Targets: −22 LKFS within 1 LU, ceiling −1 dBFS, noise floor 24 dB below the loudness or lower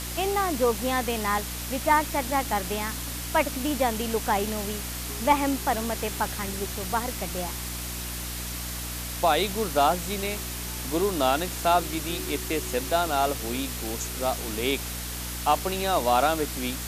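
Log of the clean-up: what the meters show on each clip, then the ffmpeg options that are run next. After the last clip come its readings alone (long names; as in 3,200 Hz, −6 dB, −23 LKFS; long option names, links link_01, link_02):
mains hum 60 Hz; hum harmonics up to 300 Hz; level of the hum −34 dBFS; background noise floor −34 dBFS; target noise floor −51 dBFS; integrated loudness −26.5 LKFS; sample peak −8.0 dBFS; target loudness −22.0 LKFS
→ -af "bandreject=frequency=60:width_type=h:width=6,bandreject=frequency=120:width_type=h:width=6,bandreject=frequency=180:width_type=h:width=6,bandreject=frequency=240:width_type=h:width=6,bandreject=frequency=300:width_type=h:width=6"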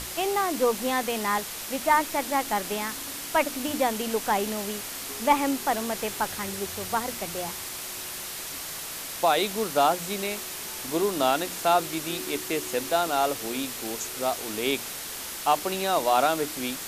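mains hum none found; background noise floor −36 dBFS; target noise floor −51 dBFS
→ -af "afftdn=noise_reduction=15:noise_floor=-36"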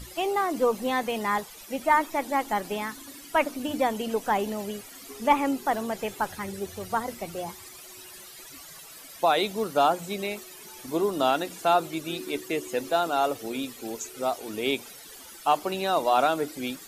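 background noise floor −46 dBFS; target noise floor −52 dBFS
→ -af "afftdn=noise_reduction=6:noise_floor=-46"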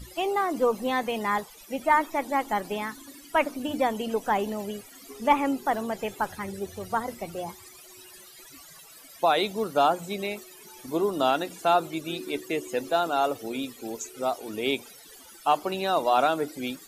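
background noise floor −49 dBFS; target noise floor −52 dBFS
→ -af "afftdn=noise_reduction=6:noise_floor=-49"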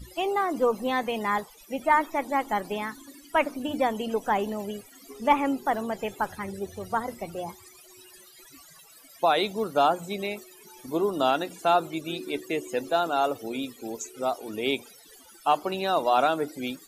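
background noise floor −52 dBFS; integrated loudness −27.5 LKFS; sample peak −9.0 dBFS; target loudness −22.0 LKFS
→ -af "volume=5.5dB"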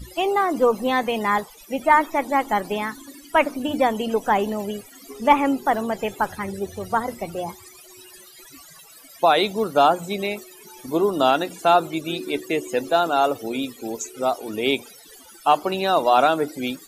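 integrated loudness −22.0 LKFS; sample peak −3.5 dBFS; background noise floor −47 dBFS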